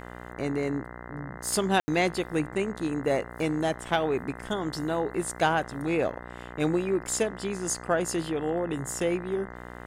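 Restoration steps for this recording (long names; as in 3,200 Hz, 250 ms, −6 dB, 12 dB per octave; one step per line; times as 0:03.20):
hum removal 60.4 Hz, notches 34
ambience match 0:01.80–0:01.88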